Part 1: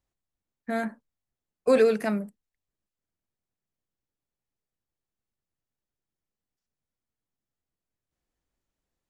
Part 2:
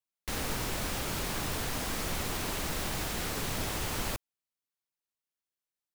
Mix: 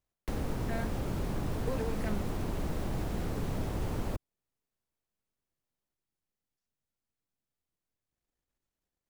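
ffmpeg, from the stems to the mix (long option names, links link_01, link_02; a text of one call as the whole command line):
ffmpeg -i stem1.wav -i stem2.wav -filter_complex "[0:a]aeval=exprs='if(lt(val(0),0),0.447*val(0),val(0))':channel_layout=same,acompressor=threshold=-32dB:ratio=6,volume=-2dB[link_01];[1:a]tiltshelf=frequency=1200:gain=8,acrossover=split=210|700[link_02][link_03][link_04];[link_02]acompressor=threshold=-31dB:ratio=4[link_05];[link_03]acompressor=threshold=-40dB:ratio=4[link_06];[link_04]acompressor=threshold=-46dB:ratio=4[link_07];[link_05][link_06][link_07]amix=inputs=3:normalize=0,volume=0dB[link_08];[link_01][link_08]amix=inputs=2:normalize=0" out.wav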